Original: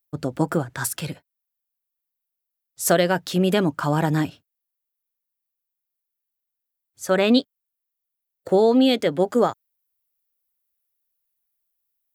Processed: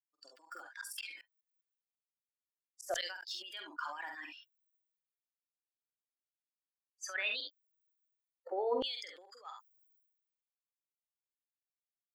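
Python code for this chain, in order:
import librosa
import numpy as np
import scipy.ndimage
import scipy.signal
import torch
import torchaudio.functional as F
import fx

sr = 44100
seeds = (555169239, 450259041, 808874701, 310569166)

y = fx.bin_expand(x, sr, power=2.0)
y = fx.over_compress(y, sr, threshold_db=-29.0, ratio=-1.0)
y = scipy.signal.sosfilt(scipy.signal.butter(4, 330.0, 'highpass', fs=sr, output='sos'), y)
y = fx.high_shelf(y, sr, hz=4600.0, db=-8.0)
y = fx.echo_multitap(y, sr, ms=(47, 67), db=(-11.0, -16.0))
y = fx.filter_lfo_highpass(y, sr, shape='saw_down', hz=0.34, low_hz=580.0, high_hz=5900.0, q=1.4)
y = fx.tremolo_shape(y, sr, shape='saw_up', hz=5.0, depth_pct=100, at=(0.81, 3.31))
y = fx.tilt_eq(y, sr, slope=-2.5)
y = fx.sustainer(y, sr, db_per_s=56.0)
y = F.gain(torch.from_numpy(y), 1.5).numpy()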